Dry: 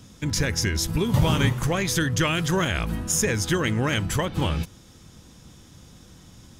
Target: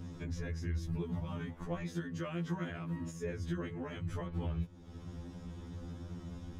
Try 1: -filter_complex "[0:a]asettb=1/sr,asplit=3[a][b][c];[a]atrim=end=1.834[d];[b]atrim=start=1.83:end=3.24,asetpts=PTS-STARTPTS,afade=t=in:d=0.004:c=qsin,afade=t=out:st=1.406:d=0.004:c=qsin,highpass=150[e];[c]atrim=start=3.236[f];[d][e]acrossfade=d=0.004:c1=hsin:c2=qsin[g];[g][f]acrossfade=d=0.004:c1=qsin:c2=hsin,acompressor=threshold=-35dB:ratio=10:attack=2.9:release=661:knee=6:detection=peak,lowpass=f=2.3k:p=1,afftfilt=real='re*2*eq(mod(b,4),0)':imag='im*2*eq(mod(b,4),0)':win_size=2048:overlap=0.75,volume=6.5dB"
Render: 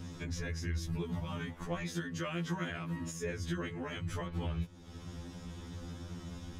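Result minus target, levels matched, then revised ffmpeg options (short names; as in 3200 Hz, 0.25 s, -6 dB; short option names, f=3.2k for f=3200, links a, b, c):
2000 Hz band +4.5 dB
-filter_complex "[0:a]asettb=1/sr,asplit=3[a][b][c];[a]atrim=end=1.834[d];[b]atrim=start=1.83:end=3.24,asetpts=PTS-STARTPTS,afade=t=in:d=0.004:c=qsin,afade=t=out:st=1.406:d=0.004:c=qsin,highpass=150[e];[c]atrim=start=3.236[f];[d][e]acrossfade=d=0.004:c1=hsin:c2=qsin[g];[g][f]acrossfade=d=0.004:c1=qsin:c2=hsin,acompressor=threshold=-35dB:ratio=10:attack=2.9:release=661:knee=6:detection=peak,lowpass=f=810:p=1,afftfilt=real='re*2*eq(mod(b,4),0)':imag='im*2*eq(mod(b,4),0)':win_size=2048:overlap=0.75,volume=6.5dB"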